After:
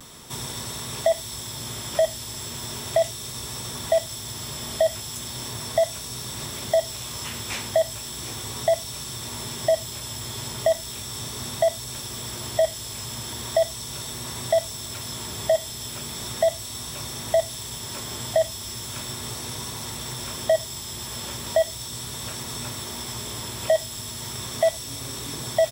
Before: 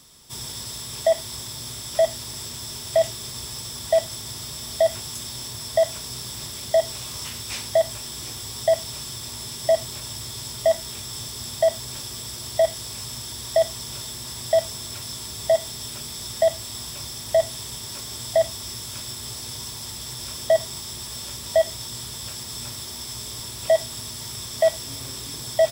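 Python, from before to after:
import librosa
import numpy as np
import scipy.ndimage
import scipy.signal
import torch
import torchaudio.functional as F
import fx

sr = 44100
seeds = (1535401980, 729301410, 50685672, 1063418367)

y = fx.notch(x, sr, hz=4900.0, q=8.5)
y = fx.vibrato(y, sr, rate_hz=0.37, depth_cents=22.0)
y = fx.band_squash(y, sr, depth_pct=40)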